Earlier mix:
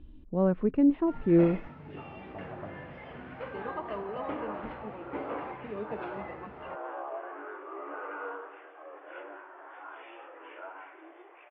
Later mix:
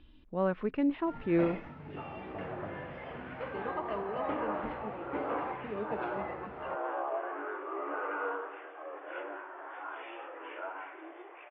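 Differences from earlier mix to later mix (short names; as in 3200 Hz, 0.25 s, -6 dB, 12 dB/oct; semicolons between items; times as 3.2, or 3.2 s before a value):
speech: add tilt shelf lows -9 dB, about 790 Hz; second sound +3.5 dB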